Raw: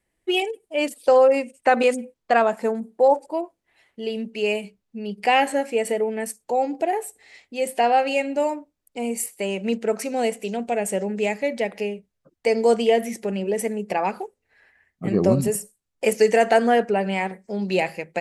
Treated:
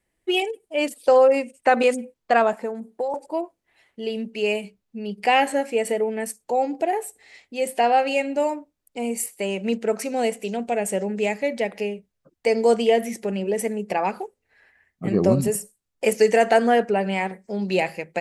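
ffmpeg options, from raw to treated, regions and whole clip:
ffmpeg -i in.wav -filter_complex "[0:a]asettb=1/sr,asplit=3[link_01][link_02][link_03];[link_01]atrim=end=2.534[link_04];[link_02]atrim=start=2.53:end=3.14,asetpts=PTS-STARTPTS,afade=type=in:duration=0.004:curve=qsin,afade=type=out:start_time=0.606:duration=0.004:curve=qsin,equalizer=frequency=120:width_type=o:width=1.1:gain=-9.5,acrossover=split=1300|3100[link_05][link_06][link_07];[link_05]acompressor=threshold=-26dB:ratio=4[link_08];[link_06]acompressor=threshold=-49dB:ratio=4[link_09];[link_07]acompressor=threshold=-59dB:ratio=4[link_10];[link_08][link_09][link_10]amix=inputs=3:normalize=0[link_11];[link_03]atrim=start=3.136[link_12];[link_04][link_11]acrossfade=duration=0.004:curve1=hsin:curve2=qsin[link_13];[link_13][link_12]acrossfade=duration=0.004:curve1=qsin:curve2=hsin" out.wav

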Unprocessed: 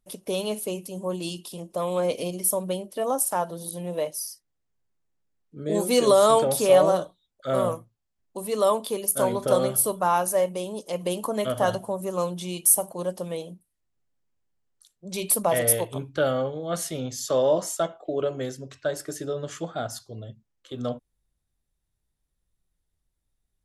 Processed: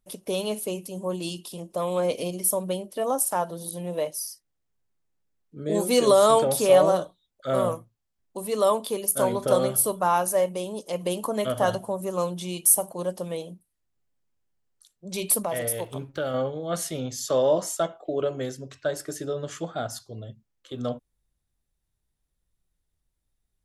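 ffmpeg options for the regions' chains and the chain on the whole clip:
ffmpeg -i in.wav -filter_complex "[0:a]asettb=1/sr,asplit=3[link_01][link_02][link_03];[link_01]atrim=end=15.434[link_04];[link_02]atrim=start=15.43:end=16.34,asetpts=PTS-STARTPTS,afade=type=in:duration=0.004:curve=qsin,afade=type=out:start_time=0.906:duration=0.004:curve=qsin,acompressor=threshold=-28dB:ratio=2:attack=3.2:release=140:knee=1:detection=peak,aeval=exprs='sgn(val(0))*max(abs(val(0))-0.0015,0)':channel_layout=same[link_05];[link_03]atrim=start=16.336[link_06];[link_04][link_05]acrossfade=duration=0.004:curve1=hsin:curve2=qsin[link_07];[link_07][link_06]acrossfade=duration=0.004:curve1=qsin:curve2=hsin" out.wav

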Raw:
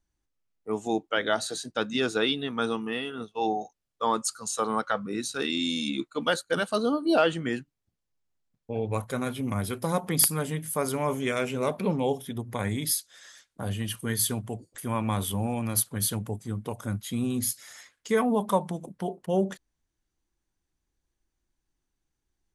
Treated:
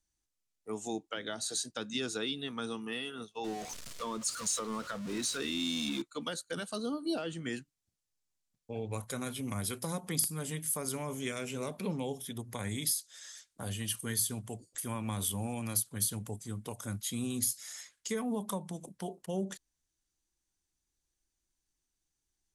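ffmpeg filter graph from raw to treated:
ffmpeg -i in.wav -filter_complex "[0:a]asettb=1/sr,asplit=3[link_01][link_02][link_03];[link_01]atrim=end=3.444[link_04];[link_02]atrim=start=3.44:end=6.02,asetpts=PTS-STARTPTS,afade=type=in:duration=0.004:curve=qsin,afade=type=out:start_time=2.576:duration=0.004:curve=qsin,aeval=exprs='val(0)+0.5*0.0266*sgn(val(0))':channel_layout=same,asuperstop=centerf=800:order=4:qfactor=6.4,highshelf=frequency=5600:gain=-9.5[link_05];[link_03]atrim=start=6.016[link_06];[link_04][link_05]acrossfade=duration=0.004:curve1=hsin:curve2=qsin[link_07];[link_07][link_06]acrossfade=duration=0.004:curve1=qsin:curve2=hsin,acrossover=split=350[link_08][link_09];[link_09]acompressor=threshold=-31dB:ratio=10[link_10];[link_08][link_10]amix=inputs=2:normalize=0,equalizer=frequency=7700:width_type=o:width=2.3:gain=12.5,volume=-7.5dB" out.wav

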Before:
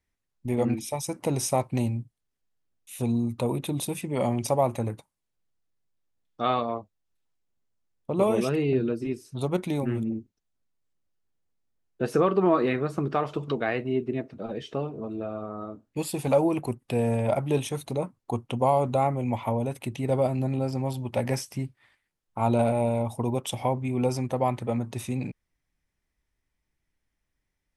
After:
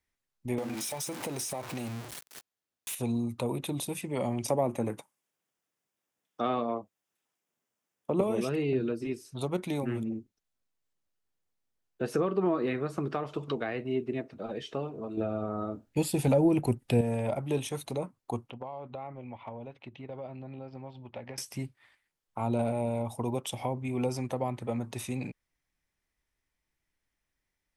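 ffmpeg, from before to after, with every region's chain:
ffmpeg -i in.wav -filter_complex "[0:a]asettb=1/sr,asplit=3[link_01][link_02][link_03];[link_01]atrim=end=0.584[link_04];[link_02]atrim=start=0.58:end=2.95,asetpts=PTS-STARTPTS,afade=type=in:duration=0.004:curve=qsin,afade=type=out:start_time=2.366:duration=0.004:curve=qsin,aeval=exprs='val(0)+0.5*0.0282*sgn(val(0))':channel_layout=same,highpass=frequency=210:poles=1,acompressor=threshold=-27dB:ratio=6:attack=3.2:release=140:knee=1:detection=peak[link_05];[link_03]atrim=start=2.946[link_06];[link_04][link_05]acrossfade=duration=0.004:curve1=hsin:curve2=qsin[link_07];[link_07][link_06]acrossfade=duration=0.004:curve1=qsin:curve2=hsin,asettb=1/sr,asplit=3[link_08][link_09][link_10];[link_08]atrim=end=4.484[link_11];[link_09]atrim=start=4.48:end=8.21,asetpts=PTS-STARTPTS,afade=type=in:duration=0.004:curve=qsin,afade=type=out:start_time=3.726:duration=0.004:curve=qsin,highpass=170,equalizer=frequency=4200:width=4.5:gain=-8,acontrast=50[link_12];[link_10]atrim=start=8.206[link_13];[link_11][link_12]acrossfade=duration=0.004:curve1=hsin:curve2=qsin[link_14];[link_14][link_13]acrossfade=duration=0.004:curve1=qsin:curve2=hsin,asettb=1/sr,asplit=3[link_15][link_16][link_17];[link_15]atrim=end=15.174[link_18];[link_16]atrim=start=15.17:end=17.01,asetpts=PTS-STARTPTS,afade=type=in:duration=0.004:curve=qsin,afade=type=out:start_time=1.836:duration=0.004:curve=qsin,bandreject=frequency=1100:width=6.7,acontrast=39,lowshelf=frequency=130:gain=8[link_19];[link_17]atrim=start=17.006[link_20];[link_18][link_19]acrossfade=duration=0.004:curve1=hsin:curve2=qsin[link_21];[link_21][link_20]acrossfade=duration=0.004:curve1=qsin:curve2=hsin,asettb=1/sr,asplit=3[link_22][link_23][link_24];[link_22]atrim=end=18.504[link_25];[link_23]atrim=start=18.5:end=21.38,asetpts=PTS-STARTPTS,afade=type=in:duration=0.004:curve=qsin,afade=type=out:start_time=2.876:duration=0.004:curve=qsin,lowpass=frequency=3800:width=0.5412,lowpass=frequency=3800:width=1.3066,agate=range=-9dB:threshold=-29dB:ratio=16:release=100:detection=peak,acompressor=threshold=-34dB:ratio=10:attack=3.2:release=140:knee=1:detection=peak[link_26];[link_24]atrim=start=21.376[link_27];[link_25][link_26]acrossfade=duration=0.004:curve1=hsin:curve2=qsin[link_28];[link_28][link_27]acrossfade=duration=0.004:curve1=qsin:curve2=hsin,lowshelf=frequency=360:gain=-6.5,acrossover=split=420[link_29][link_30];[link_30]acompressor=threshold=-35dB:ratio=3[link_31];[link_29][link_31]amix=inputs=2:normalize=0" out.wav

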